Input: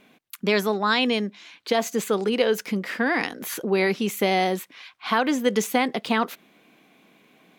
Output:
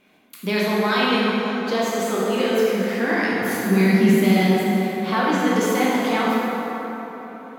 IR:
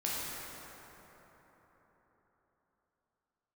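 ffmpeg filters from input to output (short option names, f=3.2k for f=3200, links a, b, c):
-filter_complex "[0:a]asplit=3[a][b][c];[a]afade=t=out:st=3.29:d=0.02[d];[b]asubboost=boost=7.5:cutoff=200,afade=t=in:st=3.29:d=0.02,afade=t=out:st=4.5:d=0.02[e];[c]afade=t=in:st=4.5:d=0.02[f];[d][e][f]amix=inputs=3:normalize=0[g];[1:a]atrim=start_sample=2205[h];[g][h]afir=irnorm=-1:irlink=0,volume=-3dB"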